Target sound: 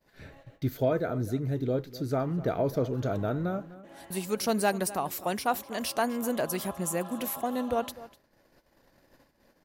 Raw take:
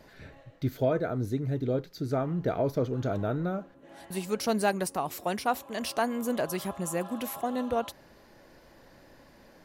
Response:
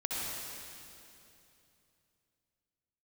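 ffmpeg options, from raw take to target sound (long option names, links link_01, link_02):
-filter_complex "[0:a]agate=range=-27dB:threshold=-53dB:ratio=16:detection=peak,highshelf=frequency=9900:gain=7.5,asplit=2[link_01][link_02];[link_02]adelay=250.7,volume=-17dB,highshelf=frequency=4000:gain=-5.64[link_03];[link_01][link_03]amix=inputs=2:normalize=0"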